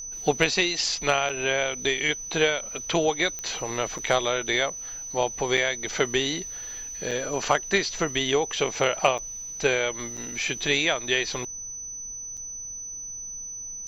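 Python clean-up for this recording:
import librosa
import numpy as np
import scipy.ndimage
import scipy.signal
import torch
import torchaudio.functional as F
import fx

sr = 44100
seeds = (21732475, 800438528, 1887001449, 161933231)

y = fx.fix_declick_ar(x, sr, threshold=10.0)
y = fx.notch(y, sr, hz=6000.0, q=30.0)
y = fx.fix_interpolate(y, sr, at_s=(1.29, 3.98, 5.57, 7.11, 9.18, 10.17, 12.37), length_ms=5.8)
y = fx.noise_reduce(y, sr, print_start_s=11.9, print_end_s=12.4, reduce_db=30.0)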